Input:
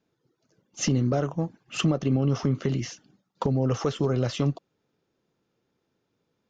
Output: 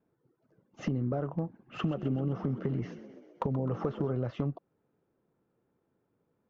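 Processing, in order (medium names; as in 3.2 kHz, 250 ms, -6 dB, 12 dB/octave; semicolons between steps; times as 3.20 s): low-pass 1.4 kHz 12 dB/octave; compression 5:1, threshold -28 dBFS, peak gain reduction 9 dB; hard clipper -20.5 dBFS, distortion -30 dB; 1.46–4.13 s: frequency-shifting echo 129 ms, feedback 62%, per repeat +44 Hz, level -14 dB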